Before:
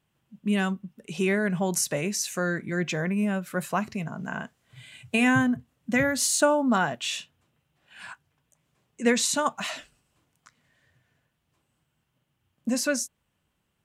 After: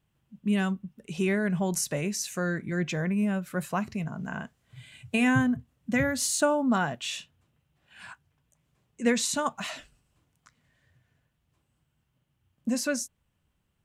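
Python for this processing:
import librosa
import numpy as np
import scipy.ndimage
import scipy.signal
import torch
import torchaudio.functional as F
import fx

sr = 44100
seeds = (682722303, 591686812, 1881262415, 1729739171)

y = fx.low_shelf(x, sr, hz=120.0, db=11.5)
y = F.gain(torch.from_numpy(y), -3.5).numpy()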